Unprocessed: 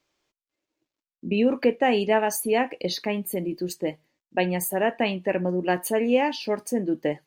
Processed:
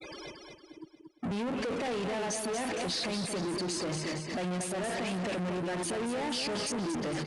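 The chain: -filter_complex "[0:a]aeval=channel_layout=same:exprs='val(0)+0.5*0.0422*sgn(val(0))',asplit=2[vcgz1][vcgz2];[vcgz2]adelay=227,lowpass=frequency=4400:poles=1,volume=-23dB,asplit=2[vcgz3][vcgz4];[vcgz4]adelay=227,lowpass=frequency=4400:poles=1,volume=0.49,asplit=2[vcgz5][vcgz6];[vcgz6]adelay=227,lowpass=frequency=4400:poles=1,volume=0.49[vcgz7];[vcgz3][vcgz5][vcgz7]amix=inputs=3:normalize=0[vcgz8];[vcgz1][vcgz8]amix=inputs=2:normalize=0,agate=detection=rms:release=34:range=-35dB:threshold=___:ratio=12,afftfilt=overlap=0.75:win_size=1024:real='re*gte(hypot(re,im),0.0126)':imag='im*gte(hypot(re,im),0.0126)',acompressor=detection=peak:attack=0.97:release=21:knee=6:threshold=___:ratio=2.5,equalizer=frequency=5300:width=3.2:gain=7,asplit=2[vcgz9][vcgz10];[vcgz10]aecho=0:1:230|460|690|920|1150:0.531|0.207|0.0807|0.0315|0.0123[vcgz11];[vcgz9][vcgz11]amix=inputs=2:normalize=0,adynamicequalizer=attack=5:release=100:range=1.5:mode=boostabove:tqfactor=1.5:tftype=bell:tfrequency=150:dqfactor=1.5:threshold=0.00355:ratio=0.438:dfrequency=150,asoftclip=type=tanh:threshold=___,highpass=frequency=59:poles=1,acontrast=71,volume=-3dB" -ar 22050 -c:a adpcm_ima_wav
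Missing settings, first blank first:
-34dB, -33dB, -34.5dB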